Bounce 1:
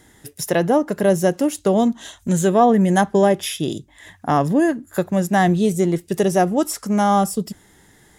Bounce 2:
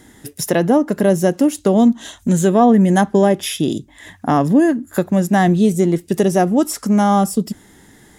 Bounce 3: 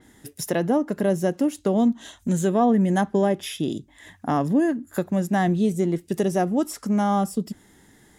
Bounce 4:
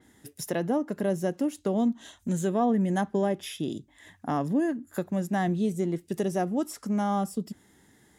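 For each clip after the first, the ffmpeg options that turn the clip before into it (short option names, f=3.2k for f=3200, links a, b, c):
-filter_complex "[0:a]equalizer=f=250:t=o:w=0.75:g=6.5,asplit=2[a][b];[b]acompressor=threshold=-21dB:ratio=6,volume=-1.5dB[c];[a][c]amix=inputs=2:normalize=0,volume=-1.5dB"
-af "adynamicequalizer=threshold=0.0126:dfrequency=4600:dqfactor=0.7:tfrequency=4600:tqfactor=0.7:attack=5:release=100:ratio=0.375:range=2:mode=cutabove:tftype=highshelf,volume=-7.5dB"
-af "highpass=51,volume=-5.5dB"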